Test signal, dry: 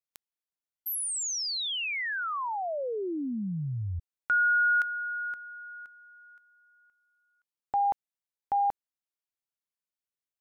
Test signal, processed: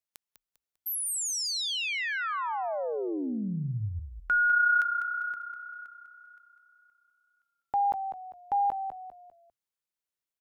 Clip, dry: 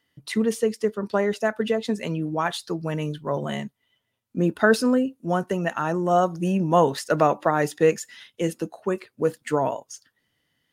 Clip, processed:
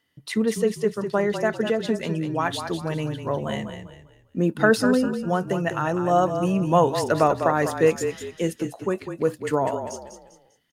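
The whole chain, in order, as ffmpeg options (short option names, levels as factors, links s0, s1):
-filter_complex "[0:a]asplit=5[s0][s1][s2][s3][s4];[s1]adelay=199,afreqshift=-31,volume=0.376[s5];[s2]adelay=398,afreqshift=-62,volume=0.132[s6];[s3]adelay=597,afreqshift=-93,volume=0.0462[s7];[s4]adelay=796,afreqshift=-124,volume=0.016[s8];[s0][s5][s6][s7][s8]amix=inputs=5:normalize=0"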